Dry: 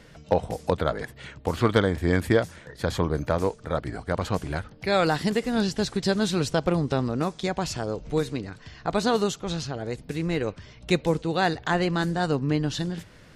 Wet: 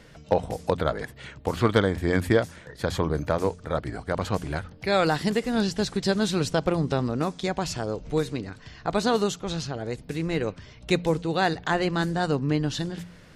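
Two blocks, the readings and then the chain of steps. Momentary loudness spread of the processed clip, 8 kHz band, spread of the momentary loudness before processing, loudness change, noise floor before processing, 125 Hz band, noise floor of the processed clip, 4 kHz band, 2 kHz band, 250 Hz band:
10 LU, 0.0 dB, 10 LU, 0.0 dB, -50 dBFS, -0.5 dB, -49 dBFS, 0.0 dB, 0.0 dB, -0.5 dB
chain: de-hum 87.7 Hz, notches 3

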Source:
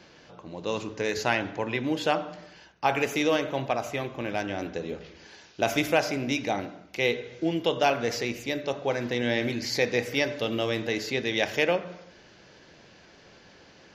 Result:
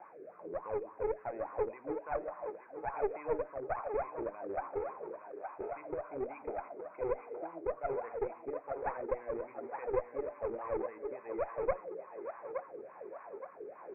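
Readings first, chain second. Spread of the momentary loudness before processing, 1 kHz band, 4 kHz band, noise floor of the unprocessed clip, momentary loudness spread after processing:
11 LU, -9.0 dB, under -40 dB, -54 dBFS, 10 LU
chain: jump at every zero crossing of -33.5 dBFS; hum notches 60/120/180/240 Hz; transient shaper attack +4 dB, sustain -3 dB; peak limiter -16 dBFS, peak gain reduction 11 dB; rotary cabinet horn 1.2 Hz; wah-wah 3.5 Hz 390–1100 Hz, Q 14; one-sided clip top -44 dBFS; Chebyshev low-pass 2.5 kHz, order 8; on a send: band-passed feedback delay 869 ms, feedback 49%, band-pass 1 kHz, level -5 dB; on the sum: trim +7.5 dB

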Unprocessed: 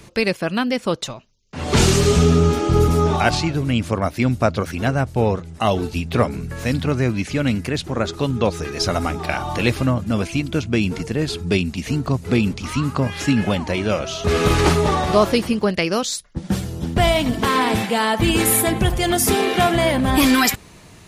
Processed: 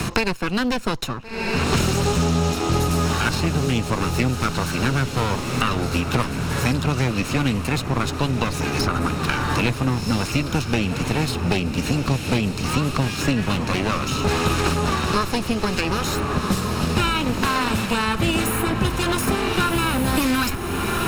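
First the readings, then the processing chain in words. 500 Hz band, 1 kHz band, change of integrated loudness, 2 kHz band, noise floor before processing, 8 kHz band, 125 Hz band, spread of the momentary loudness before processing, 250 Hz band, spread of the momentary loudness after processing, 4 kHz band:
-5.5 dB, -1.5 dB, -2.5 dB, -0.5 dB, -44 dBFS, -3.5 dB, -1.5 dB, 8 LU, -2.5 dB, 3 LU, -1.0 dB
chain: comb filter that takes the minimum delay 0.75 ms; echo that smears into a reverb 1447 ms, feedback 43%, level -10 dB; three bands compressed up and down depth 100%; trim -2 dB

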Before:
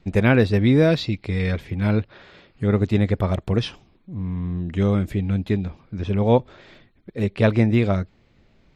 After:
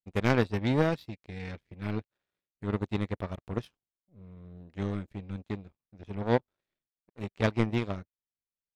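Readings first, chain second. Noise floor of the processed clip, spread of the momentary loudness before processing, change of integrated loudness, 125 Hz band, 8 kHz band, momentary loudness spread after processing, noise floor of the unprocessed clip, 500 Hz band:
under -85 dBFS, 14 LU, -10.5 dB, -12.5 dB, no reading, 15 LU, -59 dBFS, -10.5 dB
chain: power-law waveshaper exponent 2; trim -4 dB

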